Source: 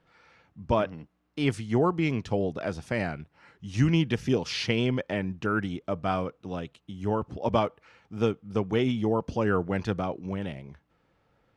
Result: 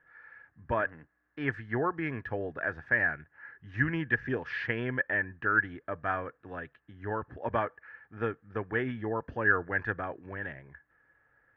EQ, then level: resonant low-pass 1.7 kHz, resonance Q 15; peaking EQ 190 Hz -11 dB 0.34 oct; -7.0 dB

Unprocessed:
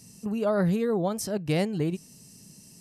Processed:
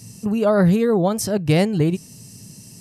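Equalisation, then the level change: peaking EQ 110 Hz +10.5 dB 0.45 oct; +8.0 dB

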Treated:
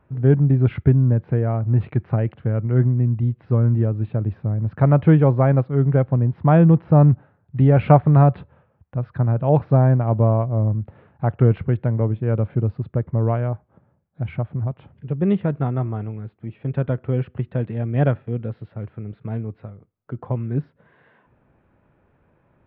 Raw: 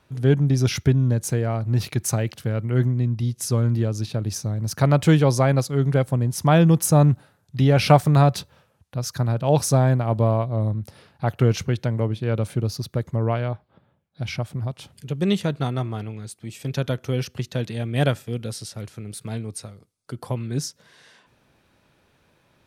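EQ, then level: Gaussian low-pass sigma 4.5 samples; bass shelf 120 Hz +4 dB; +1.5 dB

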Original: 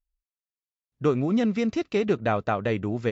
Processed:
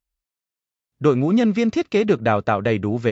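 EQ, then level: high-pass 51 Hz; +6.0 dB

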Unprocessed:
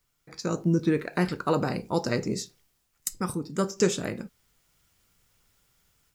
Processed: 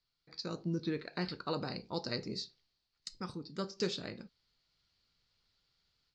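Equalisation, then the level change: four-pole ladder low-pass 4.7 kHz, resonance 75%; 0.0 dB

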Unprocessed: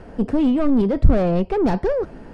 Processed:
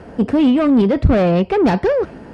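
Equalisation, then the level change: high-pass 70 Hz 12 dB/octave; dynamic bell 2.6 kHz, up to +6 dB, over -42 dBFS, Q 0.77; +4.5 dB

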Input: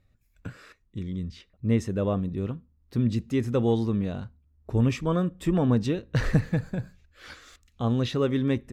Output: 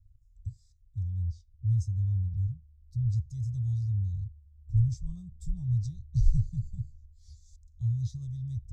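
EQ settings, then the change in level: inverse Chebyshev band-stop 240–2900 Hz, stop band 50 dB; distance through air 160 m; +8.0 dB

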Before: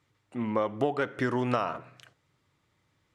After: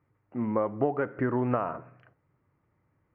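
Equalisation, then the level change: boxcar filter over 12 samples; distance through air 380 m; +2.0 dB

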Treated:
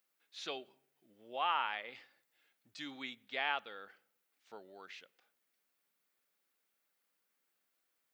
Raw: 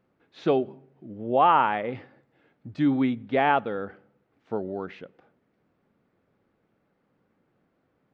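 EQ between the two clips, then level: differentiator; treble shelf 2.8 kHz +9 dB; +1.0 dB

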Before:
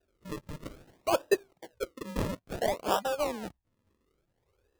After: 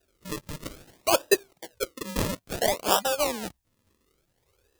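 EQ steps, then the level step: treble shelf 2.7 kHz +11 dB; +3.0 dB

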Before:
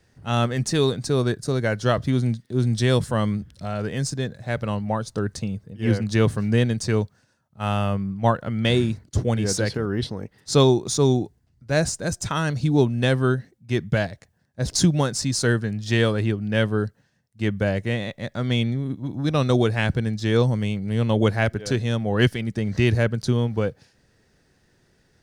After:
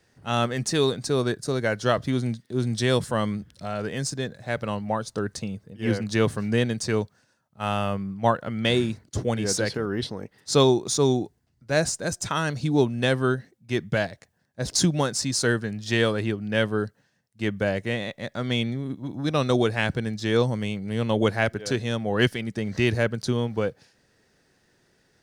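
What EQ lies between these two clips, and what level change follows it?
bass shelf 140 Hz -10.5 dB; 0.0 dB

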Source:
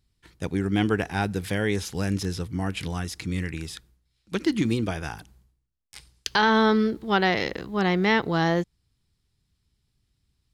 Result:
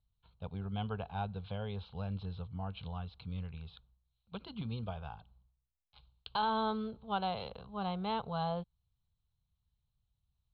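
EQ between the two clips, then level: rippled Chebyshev low-pass 4.2 kHz, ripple 3 dB; bass shelf 160 Hz +4 dB; static phaser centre 780 Hz, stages 4; -8.0 dB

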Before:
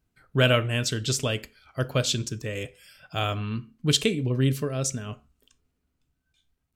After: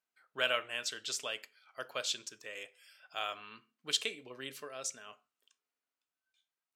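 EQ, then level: high-pass 760 Hz 12 dB/octave; treble shelf 8.4 kHz -6 dB; -7.0 dB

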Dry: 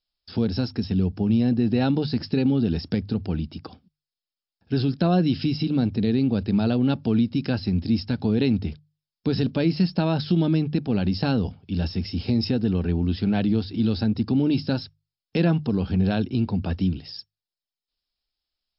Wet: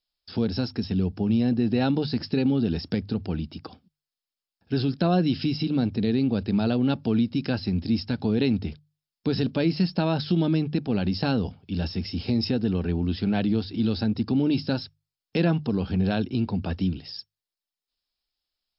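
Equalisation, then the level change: bass shelf 210 Hz -4 dB; 0.0 dB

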